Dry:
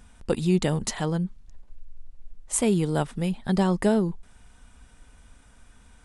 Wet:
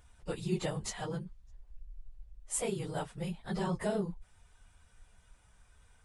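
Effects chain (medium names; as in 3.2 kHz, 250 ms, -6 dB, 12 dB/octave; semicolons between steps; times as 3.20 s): phase randomisation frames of 50 ms; peaking EQ 250 Hz -12.5 dB 0.58 oct; trim -8.5 dB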